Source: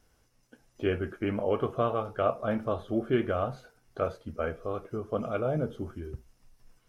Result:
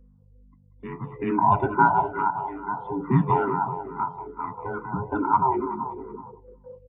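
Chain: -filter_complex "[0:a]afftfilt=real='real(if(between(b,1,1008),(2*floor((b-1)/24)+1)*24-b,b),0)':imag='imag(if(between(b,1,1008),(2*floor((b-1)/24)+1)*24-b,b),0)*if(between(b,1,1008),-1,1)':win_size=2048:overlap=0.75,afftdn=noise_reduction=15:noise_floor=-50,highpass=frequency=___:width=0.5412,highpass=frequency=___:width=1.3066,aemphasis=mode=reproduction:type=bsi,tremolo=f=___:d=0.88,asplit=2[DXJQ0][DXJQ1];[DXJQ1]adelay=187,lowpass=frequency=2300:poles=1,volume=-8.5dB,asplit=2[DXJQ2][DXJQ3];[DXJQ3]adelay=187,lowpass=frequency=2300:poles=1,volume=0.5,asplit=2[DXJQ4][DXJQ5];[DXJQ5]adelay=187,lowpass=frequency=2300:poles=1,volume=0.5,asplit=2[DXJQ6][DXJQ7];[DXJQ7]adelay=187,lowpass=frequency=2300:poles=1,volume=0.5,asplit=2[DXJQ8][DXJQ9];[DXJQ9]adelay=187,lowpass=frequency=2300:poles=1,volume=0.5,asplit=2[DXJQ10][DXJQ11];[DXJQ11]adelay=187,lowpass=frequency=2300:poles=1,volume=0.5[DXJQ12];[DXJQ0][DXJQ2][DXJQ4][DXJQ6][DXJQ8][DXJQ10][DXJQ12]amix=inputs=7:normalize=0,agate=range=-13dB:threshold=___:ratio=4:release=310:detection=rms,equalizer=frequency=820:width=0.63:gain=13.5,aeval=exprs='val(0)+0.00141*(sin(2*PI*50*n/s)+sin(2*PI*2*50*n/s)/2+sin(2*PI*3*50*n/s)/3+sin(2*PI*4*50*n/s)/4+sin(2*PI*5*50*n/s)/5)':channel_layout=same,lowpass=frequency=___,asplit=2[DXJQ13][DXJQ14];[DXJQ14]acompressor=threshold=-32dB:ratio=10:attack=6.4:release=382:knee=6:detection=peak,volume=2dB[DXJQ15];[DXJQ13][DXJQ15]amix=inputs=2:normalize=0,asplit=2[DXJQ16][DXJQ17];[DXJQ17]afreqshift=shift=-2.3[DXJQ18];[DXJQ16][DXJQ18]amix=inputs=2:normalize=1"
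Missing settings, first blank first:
130, 130, 0.58, -49dB, 4100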